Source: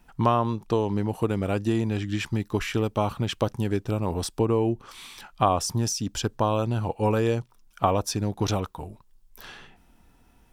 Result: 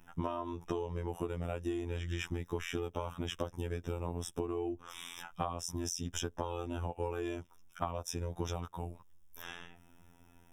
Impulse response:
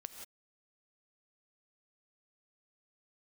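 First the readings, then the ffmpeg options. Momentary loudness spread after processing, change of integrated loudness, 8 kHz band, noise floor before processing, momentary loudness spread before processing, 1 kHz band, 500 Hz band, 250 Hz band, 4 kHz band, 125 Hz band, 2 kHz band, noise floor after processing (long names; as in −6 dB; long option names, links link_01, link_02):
9 LU, −12.5 dB, −9.5 dB, −59 dBFS, 11 LU, −14.0 dB, −12.0 dB, −13.0 dB, −10.0 dB, −13.0 dB, −9.0 dB, −62 dBFS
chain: -af "afftfilt=real='hypot(re,im)*cos(PI*b)':imag='0':win_size=2048:overlap=0.75,asuperstop=centerf=4400:order=20:qfactor=3.4,acompressor=threshold=-33dB:ratio=10,volume=1dB"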